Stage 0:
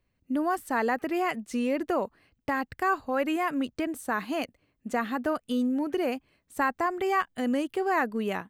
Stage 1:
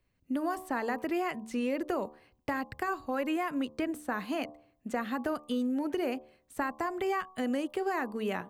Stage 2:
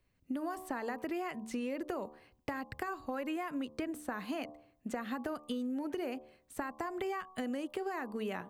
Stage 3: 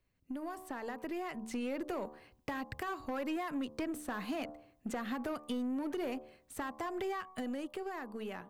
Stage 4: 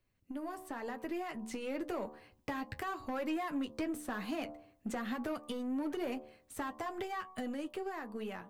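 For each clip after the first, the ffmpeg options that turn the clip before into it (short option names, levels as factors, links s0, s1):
-filter_complex "[0:a]acrossover=split=270|3300[s0][s1][s2];[s0]acompressor=threshold=0.0126:ratio=4[s3];[s1]acompressor=threshold=0.0316:ratio=4[s4];[s2]acompressor=threshold=0.00282:ratio=4[s5];[s3][s4][s5]amix=inputs=3:normalize=0,bandreject=f=74.78:t=h:w=4,bandreject=f=149.56:t=h:w=4,bandreject=f=224.34:t=h:w=4,bandreject=f=299.12:t=h:w=4,bandreject=f=373.9:t=h:w=4,bandreject=f=448.68:t=h:w=4,bandreject=f=523.46:t=h:w=4,bandreject=f=598.24:t=h:w=4,bandreject=f=673.02:t=h:w=4,bandreject=f=747.8:t=h:w=4,bandreject=f=822.58:t=h:w=4,bandreject=f=897.36:t=h:w=4,bandreject=f=972.14:t=h:w=4,bandreject=f=1046.92:t=h:w=4,bandreject=f=1121.7:t=h:w=4,bandreject=f=1196.48:t=h:w=4"
-af "acompressor=threshold=0.02:ratio=6"
-af "dynaudnorm=f=210:g=13:m=2,asoftclip=type=tanh:threshold=0.0473,aeval=exprs='0.0473*(cos(1*acos(clip(val(0)/0.0473,-1,1)))-cos(1*PI/2))+0.00168*(cos(6*acos(clip(val(0)/0.0473,-1,1)))-cos(6*PI/2))':c=same,volume=0.668"
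-af "flanger=delay=8.9:depth=1.5:regen=-48:speed=0.97:shape=sinusoidal,volume=1.58"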